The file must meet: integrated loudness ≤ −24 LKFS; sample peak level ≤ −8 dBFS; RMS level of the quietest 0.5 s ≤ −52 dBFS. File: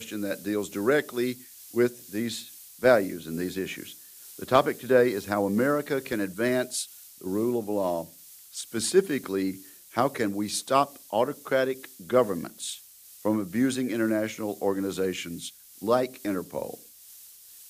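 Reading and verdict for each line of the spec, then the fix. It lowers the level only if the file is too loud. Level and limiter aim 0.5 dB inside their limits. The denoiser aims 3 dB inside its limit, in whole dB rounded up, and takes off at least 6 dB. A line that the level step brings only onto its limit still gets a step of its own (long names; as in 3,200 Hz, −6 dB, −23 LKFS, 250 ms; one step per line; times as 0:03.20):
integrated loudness −27.5 LKFS: in spec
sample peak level −7.0 dBFS: out of spec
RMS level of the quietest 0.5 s −50 dBFS: out of spec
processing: broadband denoise 6 dB, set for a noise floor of −50 dBFS
brickwall limiter −8.5 dBFS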